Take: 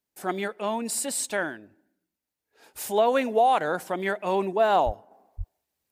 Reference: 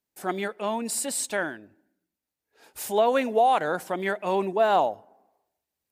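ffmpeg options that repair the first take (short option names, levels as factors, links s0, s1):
-filter_complex "[0:a]asplit=3[s0][s1][s2];[s0]afade=t=out:st=4.85:d=0.02[s3];[s1]highpass=f=140:w=0.5412,highpass=f=140:w=1.3066,afade=t=in:st=4.85:d=0.02,afade=t=out:st=4.97:d=0.02[s4];[s2]afade=t=in:st=4.97:d=0.02[s5];[s3][s4][s5]amix=inputs=3:normalize=0,asplit=3[s6][s7][s8];[s6]afade=t=out:st=5.37:d=0.02[s9];[s7]highpass=f=140:w=0.5412,highpass=f=140:w=1.3066,afade=t=in:st=5.37:d=0.02,afade=t=out:st=5.49:d=0.02[s10];[s8]afade=t=in:st=5.49:d=0.02[s11];[s9][s10][s11]amix=inputs=3:normalize=0,asetnsamples=n=441:p=0,asendcmd='5.11 volume volume -3.5dB',volume=1"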